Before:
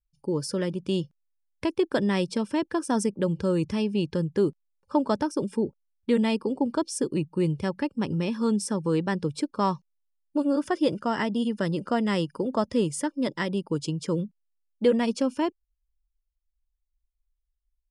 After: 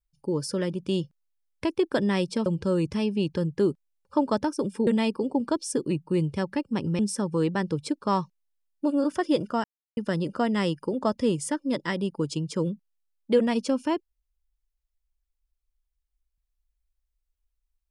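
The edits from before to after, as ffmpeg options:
ffmpeg -i in.wav -filter_complex "[0:a]asplit=6[link_01][link_02][link_03][link_04][link_05][link_06];[link_01]atrim=end=2.462[link_07];[link_02]atrim=start=3.238:end=5.652[link_08];[link_03]atrim=start=6.128:end=8.252[link_09];[link_04]atrim=start=8.508:end=11.16,asetpts=PTS-STARTPTS,afade=type=out:start_time=2.648:duration=0.004:curve=hsin[link_10];[link_05]atrim=start=11.16:end=11.49,asetpts=PTS-STARTPTS,volume=0[link_11];[link_06]atrim=start=11.49,asetpts=PTS-STARTPTS,afade=type=in:duration=0.004:curve=hsin[link_12];[link_07][link_08]acrossfade=duration=0.004:curve1=hsin:curve2=hsin[link_13];[link_13][link_09]acrossfade=duration=0.004:curve1=hsin:curve2=hsin[link_14];[link_10][link_11][link_12]concat=n=3:v=0:a=1[link_15];[link_14][link_15]acrossfade=duration=0.004:curve1=hsin:curve2=hsin" out.wav

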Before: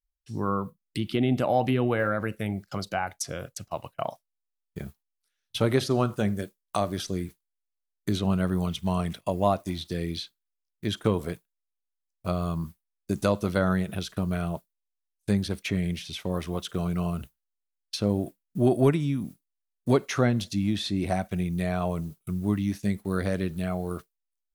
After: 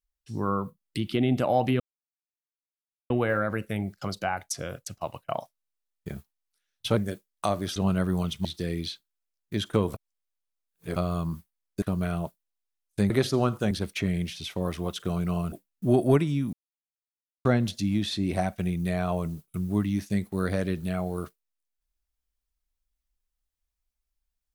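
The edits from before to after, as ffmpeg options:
ffmpeg -i in.wav -filter_complex "[0:a]asplit=13[link_01][link_02][link_03][link_04][link_05][link_06][link_07][link_08][link_09][link_10][link_11][link_12][link_13];[link_01]atrim=end=1.8,asetpts=PTS-STARTPTS,afade=type=out:start_time=1.796:duration=0.004:curve=hsin,apad=pad_dur=1.3[link_14];[link_02]atrim=start=1.8:end=5.672,asetpts=PTS-STARTPTS,afade=type=in:duration=0.004:curve=hsin[link_15];[link_03]atrim=start=6.278:end=7.072[link_16];[link_04]atrim=start=8.188:end=8.882[link_17];[link_05]atrim=start=9.758:end=11.252[link_18];[link_06]atrim=start=11.248:end=12.272,asetpts=PTS-STARTPTS,areverse[link_19];[link_07]atrim=start=12.268:end=13.132[link_20];[link_08]atrim=start=14.118:end=15.402[link_21];[link_09]atrim=start=5.668:end=6.282[link_22];[link_10]atrim=start=15.398:end=17.212[link_23];[link_11]atrim=start=18.248:end=19.26,asetpts=PTS-STARTPTS,afade=type=out:start_time=1.008:duration=0.004:curve=hsin[link_24];[link_12]atrim=start=19.26:end=20.18,asetpts=PTS-STARTPTS,volume=0[link_25];[link_13]atrim=start=20.18,asetpts=PTS-STARTPTS,afade=type=in:duration=0.004:curve=hsin[link_26];[link_14][link_15]concat=n=2:v=0:a=1[link_27];[link_27][link_16]acrossfade=duration=0.004:curve1=hsin:curve2=hsin[link_28];[link_28][link_17]acrossfade=duration=0.004:curve1=hsin:curve2=hsin[link_29];[link_29][link_18]acrossfade=duration=0.004:curve1=hsin:curve2=hsin[link_30];[link_30][link_19]acrossfade=duration=0.004:curve1=hsin:curve2=hsin[link_31];[link_31][link_20]acrossfade=duration=0.004:curve1=hsin:curve2=hsin[link_32];[link_32][link_21]acrossfade=duration=0.004:curve1=hsin:curve2=hsin[link_33];[link_33][link_22]acrossfade=duration=0.004:curve1=hsin:curve2=hsin[link_34];[link_34][link_23]acrossfade=duration=0.004:curve1=hsin:curve2=hsin[link_35];[link_24][link_25][link_26]concat=n=3:v=0:a=1[link_36];[link_35][link_36]acrossfade=duration=0.004:curve1=hsin:curve2=hsin" out.wav

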